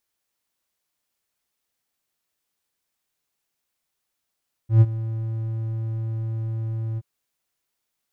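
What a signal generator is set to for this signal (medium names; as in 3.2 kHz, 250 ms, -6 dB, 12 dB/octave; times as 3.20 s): ADSR triangle 112 Hz, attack 122 ms, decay 41 ms, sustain -16.5 dB, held 2.29 s, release 35 ms -6 dBFS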